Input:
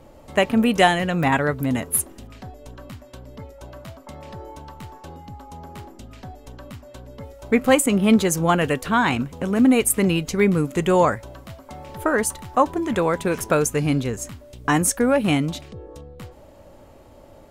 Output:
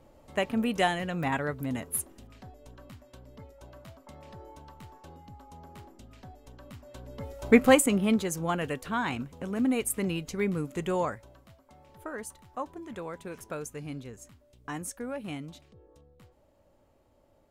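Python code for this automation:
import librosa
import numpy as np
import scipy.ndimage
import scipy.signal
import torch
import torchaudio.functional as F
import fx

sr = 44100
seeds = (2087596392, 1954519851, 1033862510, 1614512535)

y = fx.gain(x, sr, db=fx.line((6.59, -10.0), (7.48, 1.0), (8.22, -11.0), (10.88, -11.0), (11.65, -18.0)))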